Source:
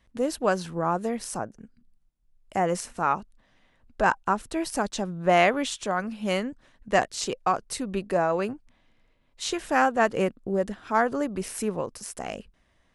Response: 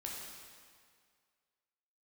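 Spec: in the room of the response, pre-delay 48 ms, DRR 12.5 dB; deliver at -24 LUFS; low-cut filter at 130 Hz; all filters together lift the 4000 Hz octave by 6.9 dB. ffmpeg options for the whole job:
-filter_complex "[0:a]highpass=130,equalizer=f=4k:t=o:g=9,asplit=2[a][b];[1:a]atrim=start_sample=2205,adelay=48[c];[b][c]afir=irnorm=-1:irlink=0,volume=-12dB[d];[a][d]amix=inputs=2:normalize=0,volume=2dB"

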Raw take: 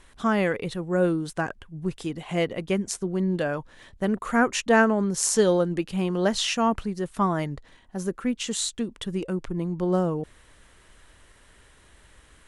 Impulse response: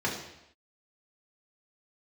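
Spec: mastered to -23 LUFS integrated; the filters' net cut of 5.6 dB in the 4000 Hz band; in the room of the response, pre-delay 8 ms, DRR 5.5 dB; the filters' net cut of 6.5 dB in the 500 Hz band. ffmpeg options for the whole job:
-filter_complex "[0:a]equalizer=f=500:t=o:g=-8.5,equalizer=f=4k:t=o:g=-7.5,asplit=2[a][b];[1:a]atrim=start_sample=2205,adelay=8[c];[b][c]afir=irnorm=-1:irlink=0,volume=-15dB[d];[a][d]amix=inputs=2:normalize=0,volume=4.5dB"

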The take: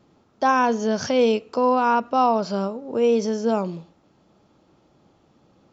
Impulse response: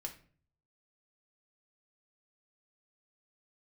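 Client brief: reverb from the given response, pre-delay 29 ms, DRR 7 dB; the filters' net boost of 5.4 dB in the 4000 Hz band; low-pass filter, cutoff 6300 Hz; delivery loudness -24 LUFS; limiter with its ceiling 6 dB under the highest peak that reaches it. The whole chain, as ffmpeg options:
-filter_complex "[0:a]lowpass=6.3k,equalizer=f=4k:t=o:g=8.5,alimiter=limit=-13.5dB:level=0:latency=1,asplit=2[a][b];[1:a]atrim=start_sample=2205,adelay=29[c];[b][c]afir=irnorm=-1:irlink=0,volume=-5dB[d];[a][d]amix=inputs=2:normalize=0,volume=-0.5dB"

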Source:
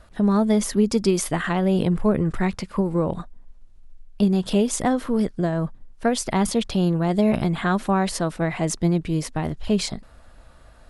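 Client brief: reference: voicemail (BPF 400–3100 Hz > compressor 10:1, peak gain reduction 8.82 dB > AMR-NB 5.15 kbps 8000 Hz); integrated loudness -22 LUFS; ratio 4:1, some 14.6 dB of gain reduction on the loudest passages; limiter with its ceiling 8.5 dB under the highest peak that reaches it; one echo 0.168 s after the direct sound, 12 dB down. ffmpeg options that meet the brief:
-af "acompressor=threshold=-33dB:ratio=4,alimiter=level_in=2.5dB:limit=-24dB:level=0:latency=1,volume=-2.5dB,highpass=400,lowpass=3.1k,aecho=1:1:168:0.251,acompressor=threshold=-41dB:ratio=10,volume=26.5dB" -ar 8000 -c:a libopencore_amrnb -b:a 5150

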